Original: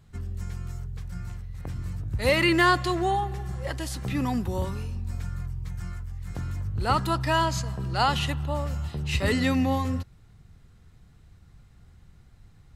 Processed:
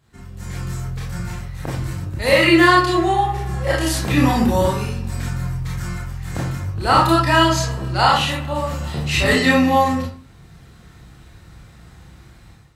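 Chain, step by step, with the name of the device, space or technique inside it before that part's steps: far laptop microphone (reverberation RT60 0.40 s, pre-delay 25 ms, DRR -4.5 dB; high-pass 200 Hz 6 dB/octave; level rider gain up to 12 dB); trim -1 dB

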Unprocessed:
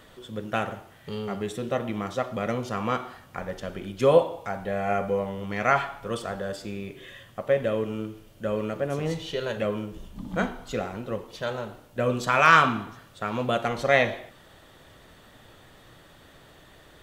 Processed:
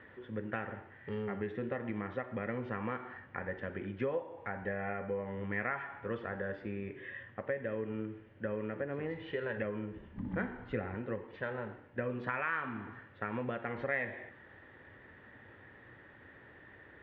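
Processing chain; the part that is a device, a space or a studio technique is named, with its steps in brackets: bass amplifier (compression 5:1, threshold -29 dBFS, peak gain reduction 16 dB; cabinet simulation 85–2200 Hz, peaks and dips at 90 Hz +3 dB, 160 Hz -8 dB, 670 Hz -8 dB, 1.2 kHz -6 dB, 1.8 kHz +8 dB); 10.18–10.95 s: bass shelf 120 Hz +10 dB; trim -2.5 dB

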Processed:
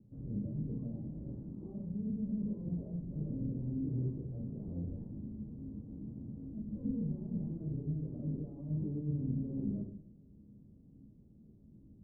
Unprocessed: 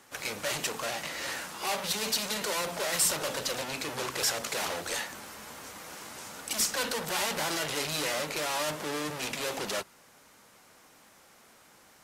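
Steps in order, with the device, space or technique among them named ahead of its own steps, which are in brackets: club heard from the street (peak limiter -26 dBFS, peak gain reduction 11 dB; low-pass 230 Hz 24 dB/octave; reverberation RT60 0.60 s, pre-delay 11 ms, DRR -2 dB); trim +9.5 dB

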